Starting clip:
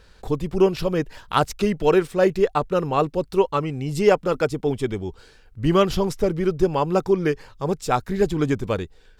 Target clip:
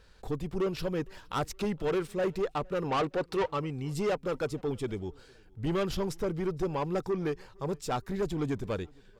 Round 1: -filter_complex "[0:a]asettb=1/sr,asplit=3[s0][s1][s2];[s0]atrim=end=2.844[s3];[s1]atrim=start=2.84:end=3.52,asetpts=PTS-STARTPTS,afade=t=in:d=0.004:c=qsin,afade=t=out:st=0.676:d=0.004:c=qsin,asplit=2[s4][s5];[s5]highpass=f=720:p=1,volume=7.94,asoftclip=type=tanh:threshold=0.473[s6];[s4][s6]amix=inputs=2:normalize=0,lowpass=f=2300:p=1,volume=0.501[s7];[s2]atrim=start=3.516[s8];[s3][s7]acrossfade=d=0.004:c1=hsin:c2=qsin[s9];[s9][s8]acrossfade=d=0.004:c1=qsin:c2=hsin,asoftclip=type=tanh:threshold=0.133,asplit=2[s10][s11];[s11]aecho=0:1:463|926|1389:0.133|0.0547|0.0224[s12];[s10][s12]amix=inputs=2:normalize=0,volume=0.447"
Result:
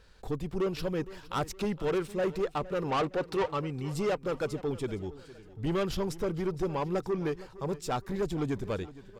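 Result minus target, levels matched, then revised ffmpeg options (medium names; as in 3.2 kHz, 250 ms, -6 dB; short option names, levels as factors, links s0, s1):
echo-to-direct +10.5 dB
-filter_complex "[0:a]asettb=1/sr,asplit=3[s0][s1][s2];[s0]atrim=end=2.844[s3];[s1]atrim=start=2.84:end=3.52,asetpts=PTS-STARTPTS,afade=t=in:d=0.004:c=qsin,afade=t=out:st=0.676:d=0.004:c=qsin,asplit=2[s4][s5];[s5]highpass=f=720:p=1,volume=7.94,asoftclip=type=tanh:threshold=0.473[s6];[s4][s6]amix=inputs=2:normalize=0,lowpass=f=2300:p=1,volume=0.501[s7];[s2]atrim=start=3.516[s8];[s3][s7]acrossfade=d=0.004:c1=hsin:c2=qsin[s9];[s9][s8]acrossfade=d=0.004:c1=qsin:c2=hsin,asoftclip=type=tanh:threshold=0.133,asplit=2[s10][s11];[s11]aecho=0:1:463|926:0.0398|0.0163[s12];[s10][s12]amix=inputs=2:normalize=0,volume=0.447"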